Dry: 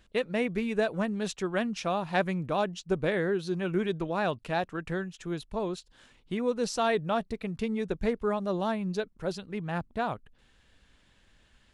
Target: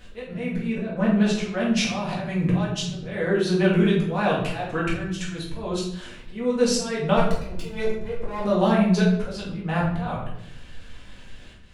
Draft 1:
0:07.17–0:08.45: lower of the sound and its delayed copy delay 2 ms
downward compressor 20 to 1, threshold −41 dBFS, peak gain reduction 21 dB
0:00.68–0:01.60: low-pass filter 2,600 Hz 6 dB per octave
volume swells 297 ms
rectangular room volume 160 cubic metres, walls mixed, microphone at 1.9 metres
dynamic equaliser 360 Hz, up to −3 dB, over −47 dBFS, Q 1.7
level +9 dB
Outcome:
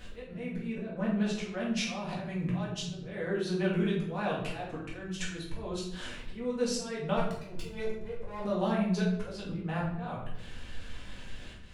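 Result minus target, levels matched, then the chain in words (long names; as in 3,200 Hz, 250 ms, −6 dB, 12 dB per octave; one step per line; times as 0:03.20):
downward compressor: peak gain reduction +10 dB
0:07.17–0:08.45: lower of the sound and its delayed copy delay 2 ms
downward compressor 20 to 1, threshold −30.5 dBFS, peak gain reduction 11 dB
0:00.68–0:01.60: low-pass filter 2,600 Hz 6 dB per octave
volume swells 297 ms
rectangular room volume 160 cubic metres, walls mixed, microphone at 1.9 metres
dynamic equaliser 360 Hz, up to −3 dB, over −47 dBFS, Q 1.7
level +9 dB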